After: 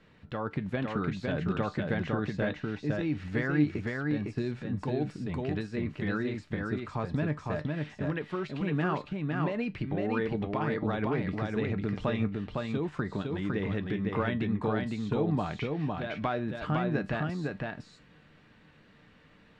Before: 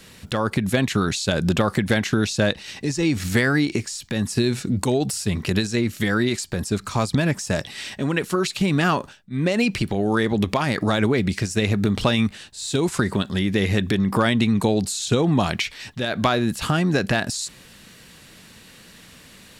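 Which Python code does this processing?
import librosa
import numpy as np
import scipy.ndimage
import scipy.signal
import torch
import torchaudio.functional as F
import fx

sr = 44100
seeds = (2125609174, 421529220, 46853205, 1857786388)

y = scipy.signal.sosfilt(scipy.signal.butter(2, 2000.0, 'lowpass', fs=sr, output='sos'), x)
y = fx.comb_fb(y, sr, f0_hz=150.0, decay_s=0.19, harmonics='all', damping=0.0, mix_pct=60)
y = y + 10.0 ** (-3.0 / 20.0) * np.pad(y, (int(507 * sr / 1000.0), 0))[:len(y)]
y = y * 10.0 ** (-5.5 / 20.0)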